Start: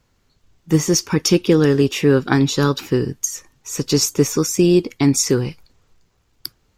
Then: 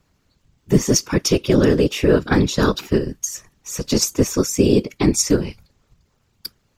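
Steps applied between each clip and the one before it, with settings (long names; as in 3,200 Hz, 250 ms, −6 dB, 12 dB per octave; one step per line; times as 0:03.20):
in parallel at −2.5 dB: output level in coarse steps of 17 dB
on the sum: random phases in short frames
level −4 dB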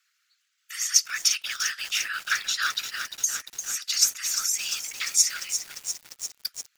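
Butterworth high-pass 1,300 Hz 72 dB per octave
feedback echo at a low word length 348 ms, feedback 80%, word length 6 bits, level −8 dB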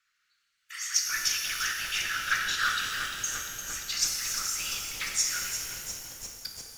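spectral tilt −3 dB per octave
reverb with rising layers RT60 2.1 s, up +12 semitones, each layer −8 dB, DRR 1 dB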